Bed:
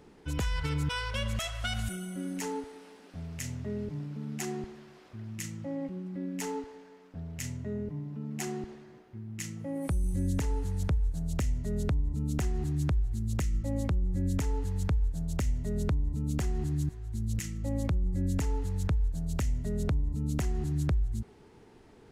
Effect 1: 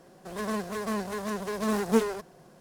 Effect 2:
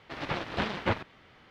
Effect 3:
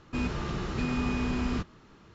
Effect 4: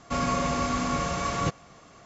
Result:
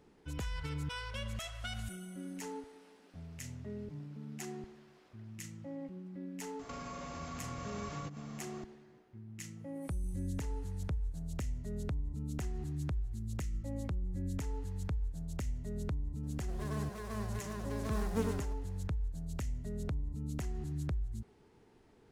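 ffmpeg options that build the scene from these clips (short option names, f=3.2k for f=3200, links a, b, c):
-filter_complex "[0:a]volume=-8dB[a];[4:a]acompressor=threshold=-40dB:ratio=6:attack=3.2:release=140:knee=1:detection=peak[b];[1:a]aecho=1:1:94:0.531[c];[b]atrim=end=2.05,asetpts=PTS-STARTPTS,volume=-2dB,afade=t=in:d=0.004:c=hsin,afade=t=out:st=2.046:d=0.004:c=hsin,adelay=6590[d];[c]atrim=end=2.6,asetpts=PTS-STARTPTS,volume=-12dB,afade=t=in:d=0.004:c=hsin,afade=t=out:st=2.596:d=0.004:c=hsin,adelay=16230[e];[a][d][e]amix=inputs=3:normalize=0"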